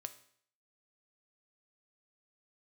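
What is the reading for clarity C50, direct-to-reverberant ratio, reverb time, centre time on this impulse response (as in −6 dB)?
14.0 dB, 9.0 dB, 0.60 s, 6 ms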